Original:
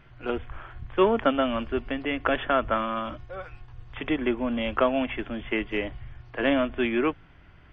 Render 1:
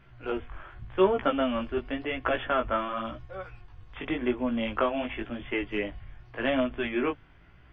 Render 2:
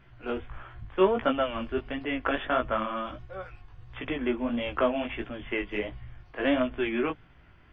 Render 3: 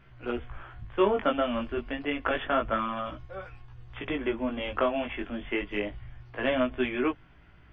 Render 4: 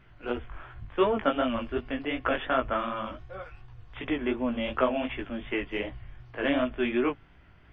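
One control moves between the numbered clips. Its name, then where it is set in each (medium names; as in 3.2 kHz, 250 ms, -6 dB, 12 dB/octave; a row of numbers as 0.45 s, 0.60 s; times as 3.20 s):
chorus, rate: 0.91 Hz, 1.5 Hz, 0.29 Hz, 2.7 Hz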